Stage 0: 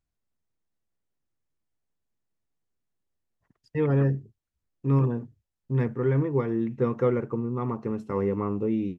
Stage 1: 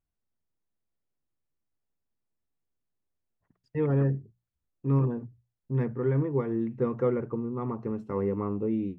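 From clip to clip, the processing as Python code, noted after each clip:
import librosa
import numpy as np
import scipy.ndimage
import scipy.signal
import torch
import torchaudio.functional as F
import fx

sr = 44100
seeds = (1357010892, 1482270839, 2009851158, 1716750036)

y = fx.high_shelf(x, sr, hz=2500.0, db=-10.0)
y = fx.hum_notches(y, sr, base_hz=60, count=3)
y = y * 10.0 ** (-2.0 / 20.0)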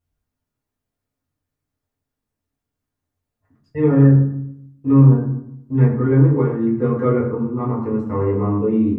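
y = fx.rev_fdn(x, sr, rt60_s=0.74, lf_ratio=1.35, hf_ratio=0.55, size_ms=66.0, drr_db=-6.5)
y = y * 10.0 ** (1.5 / 20.0)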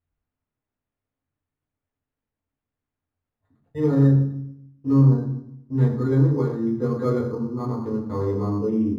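y = np.interp(np.arange(len(x)), np.arange(len(x))[::8], x[::8])
y = y * 10.0 ** (-5.0 / 20.0)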